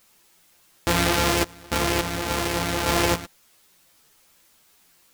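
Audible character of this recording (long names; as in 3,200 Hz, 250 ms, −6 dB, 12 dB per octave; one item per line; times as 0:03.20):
a buzz of ramps at a fixed pitch in blocks of 256 samples
sample-and-hold tremolo, depth 95%
a quantiser's noise floor 10 bits, dither triangular
a shimmering, thickened sound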